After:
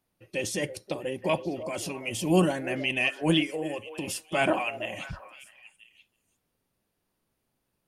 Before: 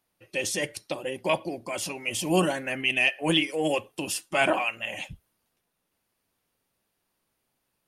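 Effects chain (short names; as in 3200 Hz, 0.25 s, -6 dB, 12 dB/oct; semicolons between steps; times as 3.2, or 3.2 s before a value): low shelf 450 Hz +8.5 dB; 3.52–4.08 compressor, threshold -26 dBFS, peak gain reduction 9.5 dB; delay with a stepping band-pass 0.327 s, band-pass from 510 Hz, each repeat 1.4 oct, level -10 dB; gain -4 dB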